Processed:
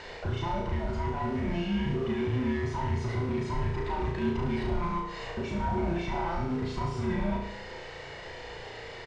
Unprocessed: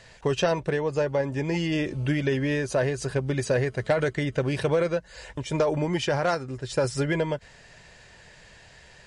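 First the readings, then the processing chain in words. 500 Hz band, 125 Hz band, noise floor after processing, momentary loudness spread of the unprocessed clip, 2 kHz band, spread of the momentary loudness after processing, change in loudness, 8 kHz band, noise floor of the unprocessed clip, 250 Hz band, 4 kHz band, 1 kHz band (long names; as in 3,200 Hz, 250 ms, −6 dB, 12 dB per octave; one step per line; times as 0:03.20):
−9.0 dB, −3.0 dB, −43 dBFS, 5 LU, −7.0 dB, 12 LU, −5.5 dB, −14.5 dB, −52 dBFS, −2.0 dB, −7.0 dB, 0.0 dB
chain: frequency inversion band by band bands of 500 Hz
high-shelf EQ 4,100 Hz +10.5 dB
comb filter 1.4 ms, depth 44%
in parallel at +2 dB: compressor whose output falls as the input rises −29 dBFS
on the sum: brickwall limiter −19.5 dBFS, peak gain reduction 12 dB
noise that follows the level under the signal 11 dB
soft clipping −26 dBFS, distortion −13 dB
head-to-tape spacing loss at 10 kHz 38 dB
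on a send: flutter between parallel walls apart 6 metres, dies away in 0.71 s
on the sum: one half of a high-frequency compander encoder only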